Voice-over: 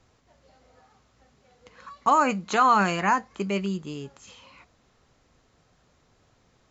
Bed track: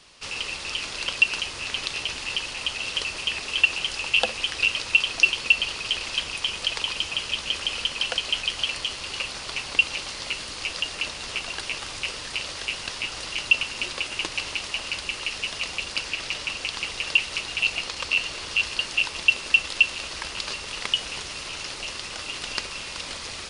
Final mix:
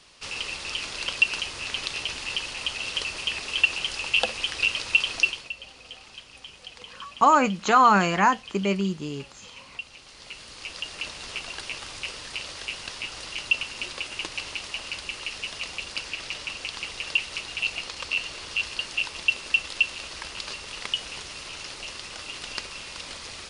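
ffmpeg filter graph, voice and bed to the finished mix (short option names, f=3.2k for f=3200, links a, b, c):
-filter_complex "[0:a]adelay=5150,volume=2.5dB[a];[1:a]volume=11.5dB,afade=t=out:st=5.15:d=0.35:silence=0.16788,afade=t=in:st=9.99:d=1.16:silence=0.223872[b];[a][b]amix=inputs=2:normalize=0"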